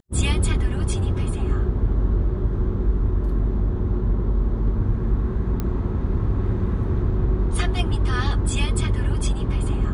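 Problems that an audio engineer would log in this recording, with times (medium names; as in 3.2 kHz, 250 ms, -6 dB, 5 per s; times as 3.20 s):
5.60 s: pop -13 dBFS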